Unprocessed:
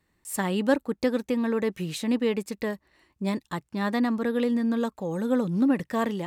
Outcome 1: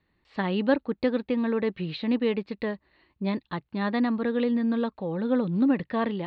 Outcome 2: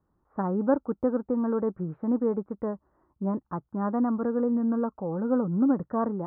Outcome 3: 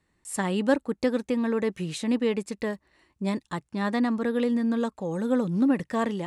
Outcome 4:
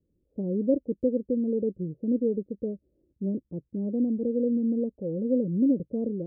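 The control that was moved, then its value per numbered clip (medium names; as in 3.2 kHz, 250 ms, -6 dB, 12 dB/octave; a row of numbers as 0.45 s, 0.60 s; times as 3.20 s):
Chebyshev low-pass, frequency: 4.3 kHz, 1.4 kHz, 11 kHz, 540 Hz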